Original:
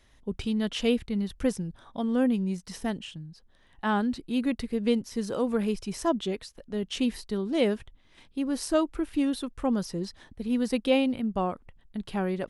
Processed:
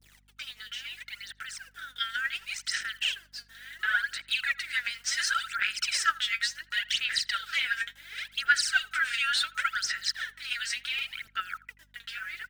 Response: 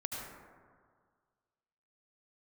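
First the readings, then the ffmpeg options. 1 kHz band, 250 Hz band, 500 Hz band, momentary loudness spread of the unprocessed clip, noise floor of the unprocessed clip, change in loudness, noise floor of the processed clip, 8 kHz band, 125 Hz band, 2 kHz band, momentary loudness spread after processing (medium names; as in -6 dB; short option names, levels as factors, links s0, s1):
0.0 dB, under -40 dB, under -30 dB, 11 LU, -60 dBFS, 0.0 dB, -62 dBFS, +8.0 dB, under -20 dB, +13.0 dB, 14 LU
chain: -filter_complex "[0:a]adynamicequalizer=threshold=0.00282:dfrequency=1700:dqfactor=2.2:tfrequency=1700:tqfactor=2.2:attack=5:release=100:ratio=0.375:range=2.5:mode=boostabove:tftype=bell,afftfilt=real='re*between(b*sr/4096,1300,9300)':imag='im*between(b*sr/4096,1300,9300)':win_size=4096:overlap=0.75,highshelf=f=4300:g=-10,acompressor=threshold=0.00794:ratio=4,alimiter=level_in=5.31:limit=0.0631:level=0:latency=1:release=153,volume=0.188,dynaudnorm=f=390:g=11:m=3.55,acrusher=bits=10:mix=0:aa=0.000001,aphaser=in_gain=1:out_gain=1:delay=4.4:decay=0.75:speed=0.7:type=sinusoidal,aeval=exprs='val(0)+0.000251*(sin(2*PI*50*n/s)+sin(2*PI*2*50*n/s)/2+sin(2*PI*3*50*n/s)/3+sin(2*PI*4*50*n/s)/4+sin(2*PI*5*50*n/s)/5)':c=same,asplit=2[s0][s1];[s1]adelay=82,lowpass=f=1800:p=1,volume=0.112,asplit=2[s2][s3];[s3]adelay=82,lowpass=f=1800:p=1,volume=0.29[s4];[s0][s2][s4]amix=inputs=3:normalize=0,volume=2.37"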